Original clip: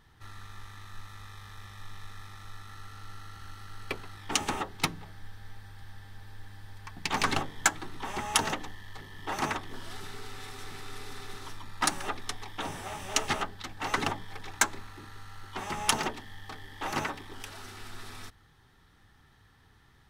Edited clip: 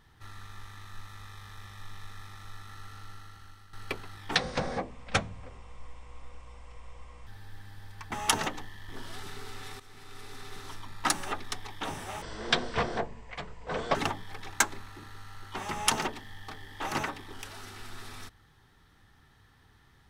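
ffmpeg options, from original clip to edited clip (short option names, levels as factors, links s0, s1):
-filter_complex "[0:a]asplit=9[s0][s1][s2][s3][s4][s5][s6][s7][s8];[s0]atrim=end=3.73,asetpts=PTS-STARTPTS,afade=t=out:st=2.95:d=0.78:silence=0.266073[s9];[s1]atrim=start=3.73:end=4.354,asetpts=PTS-STARTPTS,afade=t=in:d=0.004:c=hsin:silence=0.266073[s10];[s2]atrim=start=4.35:end=6.13,asetpts=PTS-STARTPTS,asetrate=26901,aresample=44100,atrim=end_sample=128685,asetpts=PTS-STARTPTS[s11];[s3]atrim=start=6.126:end=6.982[s12];[s4]atrim=start=8.178:end=8.952[s13];[s5]atrim=start=9.658:end=10.57,asetpts=PTS-STARTPTS,afade=t=out:st=0.908:d=0.004:c=hsin:silence=0.199526[s14];[s6]atrim=start=10.57:end=12.994,asetpts=PTS-STARTPTS,afade=t=in:d=1.14:c=qsin:silence=0.199526[s15];[s7]atrim=start=12.99:end=13.96,asetpts=PTS-STARTPTS,asetrate=24696,aresample=44100[s16];[s8]atrim=start=13.956[s17];[s9][s10]concat=n=2:v=0:a=1[s18];[s18][s11]acrossfade=d=0.004:c1=hsin:c2=hsin[s19];[s19][s12]acrossfade=d=0.004:c1=hsin:c2=hsin[s20];[s20][s13]acrossfade=d=0.004:c1=hsin:c2=hsin[s21];[s14][s15]concat=n=2:v=0:a=1[s22];[s21][s22]acrossfade=d=0.004:c1=hsin:c2=hsin[s23];[s23][s16]acrossfade=d=0.004:c1=hsin:c2=hsin[s24];[s24][s17]acrossfade=d=0.004:c1=hsin:c2=hsin"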